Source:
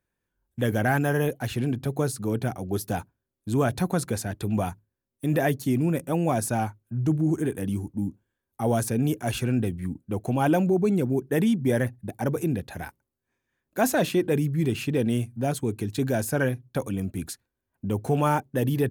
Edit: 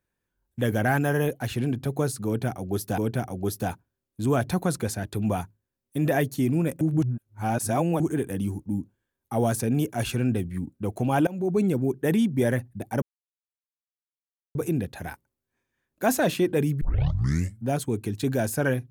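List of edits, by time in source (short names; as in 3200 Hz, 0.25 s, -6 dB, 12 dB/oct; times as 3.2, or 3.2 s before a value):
2.26–2.98 loop, 2 plays
6.09–7.28 reverse
10.55–10.86 fade in, from -23.5 dB
12.3 insert silence 1.53 s
14.56 tape start 0.82 s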